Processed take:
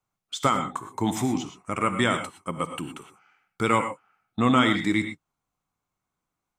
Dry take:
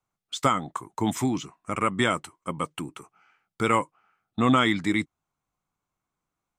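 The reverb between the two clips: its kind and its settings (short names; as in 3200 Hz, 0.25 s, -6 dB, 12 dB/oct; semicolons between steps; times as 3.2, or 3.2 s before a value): non-linear reverb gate 0.14 s rising, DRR 7.5 dB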